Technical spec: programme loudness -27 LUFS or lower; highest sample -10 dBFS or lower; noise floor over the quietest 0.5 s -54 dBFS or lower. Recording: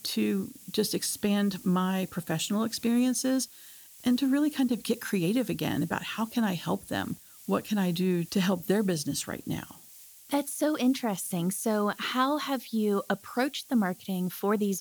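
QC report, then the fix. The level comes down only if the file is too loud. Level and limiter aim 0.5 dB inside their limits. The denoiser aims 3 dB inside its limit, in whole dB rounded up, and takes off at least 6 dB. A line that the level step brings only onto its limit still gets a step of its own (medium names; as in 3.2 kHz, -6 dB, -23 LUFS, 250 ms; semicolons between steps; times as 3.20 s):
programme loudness -29.0 LUFS: pass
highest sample -12.5 dBFS: pass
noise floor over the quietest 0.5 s -52 dBFS: fail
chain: noise reduction 6 dB, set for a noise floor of -52 dBFS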